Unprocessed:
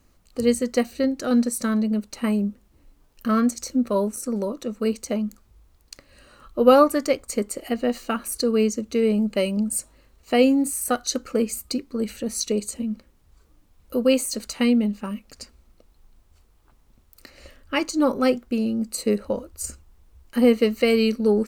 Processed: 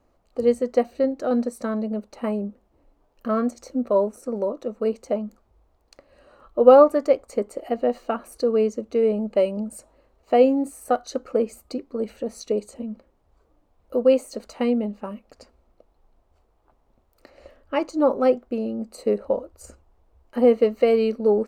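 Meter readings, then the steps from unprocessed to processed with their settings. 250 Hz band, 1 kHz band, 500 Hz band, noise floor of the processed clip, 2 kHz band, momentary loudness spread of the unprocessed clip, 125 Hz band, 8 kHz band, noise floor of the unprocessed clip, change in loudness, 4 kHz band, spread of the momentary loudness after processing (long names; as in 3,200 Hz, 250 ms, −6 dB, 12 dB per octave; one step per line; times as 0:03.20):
−4.0 dB, +1.5 dB, +3.0 dB, −65 dBFS, −7.0 dB, 11 LU, can't be measured, −15.0 dB, −59 dBFS, +0.5 dB, −10.5 dB, 14 LU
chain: drawn EQ curve 180 Hz 0 dB, 670 Hz +13 dB, 1,600 Hz +1 dB, 11,000 Hz −10 dB
level −7 dB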